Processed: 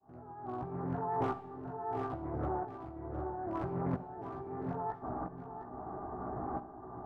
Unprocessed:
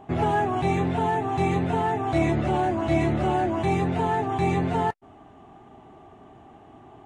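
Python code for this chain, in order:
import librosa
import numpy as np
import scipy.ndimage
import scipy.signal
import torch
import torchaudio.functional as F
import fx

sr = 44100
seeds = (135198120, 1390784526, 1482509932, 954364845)

p1 = scipy.signal.sosfilt(scipy.signal.butter(8, 1500.0, 'lowpass', fs=sr, output='sos'), x)
p2 = fx.peak_eq(p1, sr, hz=180.0, db=-3.0, octaves=2.6)
p3 = fx.over_compress(p2, sr, threshold_db=-36.0, ratio=-1.0)
p4 = np.clip(10.0 ** (27.5 / 20.0) * p3, -1.0, 1.0) / 10.0 ** (27.5 / 20.0)
p5 = fx.tremolo_shape(p4, sr, shape='saw_up', hz=0.76, depth_pct=100)
p6 = fx.doubler(p5, sr, ms=16.0, db=-3)
p7 = p6 + fx.echo_single(p6, sr, ms=710, db=-9.5, dry=0)
p8 = fx.rev_schroeder(p7, sr, rt60_s=0.84, comb_ms=29, drr_db=11.5)
p9 = fx.doppler_dist(p8, sr, depth_ms=0.5)
y = p9 * librosa.db_to_amplitude(1.0)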